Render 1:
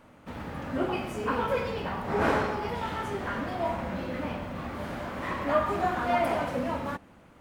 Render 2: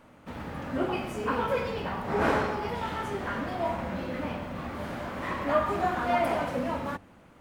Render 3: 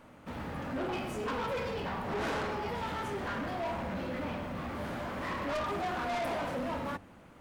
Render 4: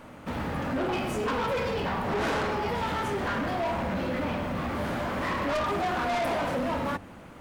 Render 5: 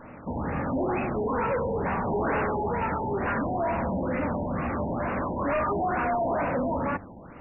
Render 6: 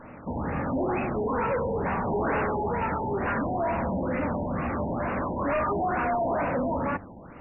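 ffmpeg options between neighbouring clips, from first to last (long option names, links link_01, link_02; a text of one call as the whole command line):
ffmpeg -i in.wav -af "bandreject=frequency=50:width_type=h:width=6,bandreject=frequency=100:width_type=h:width=6" out.wav
ffmpeg -i in.wav -af "asoftclip=type=tanh:threshold=-31dB" out.wav
ffmpeg -i in.wav -af "acompressor=threshold=-36dB:ratio=2.5,volume=8.5dB" out.wav
ffmpeg -i in.wav -af "afftfilt=real='re*lt(b*sr/1024,950*pow(2900/950,0.5+0.5*sin(2*PI*2.2*pts/sr)))':imag='im*lt(b*sr/1024,950*pow(2900/950,0.5+0.5*sin(2*PI*2.2*pts/sr)))':win_size=1024:overlap=0.75,volume=2dB" out.wav
ffmpeg -i in.wav -ar 22050 -c:a wmav2 -b:a 64k out.wma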